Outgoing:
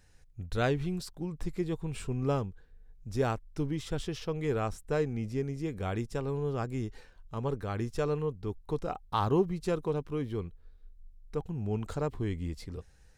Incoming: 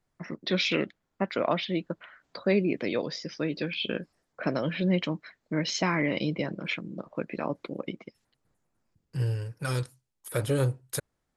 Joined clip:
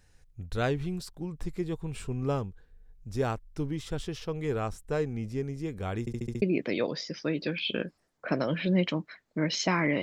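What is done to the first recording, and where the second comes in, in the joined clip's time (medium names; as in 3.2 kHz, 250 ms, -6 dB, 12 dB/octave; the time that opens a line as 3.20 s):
outgoing
6.00 s: stutter in place 0.07 s, 6 plays
6.42 s: go over to incoming from 2.57 s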